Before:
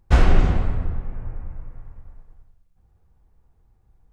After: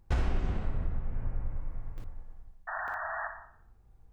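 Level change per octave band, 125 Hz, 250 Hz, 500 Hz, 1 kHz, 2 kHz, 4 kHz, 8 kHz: -11.5 dB, -12.5 dB, -11.0 dB, -5.0 dB, -3.0 dB, under -10 dB, n/a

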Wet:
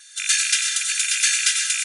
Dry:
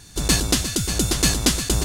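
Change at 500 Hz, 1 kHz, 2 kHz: under -40 dB, -9.0 dB, +7.0 dB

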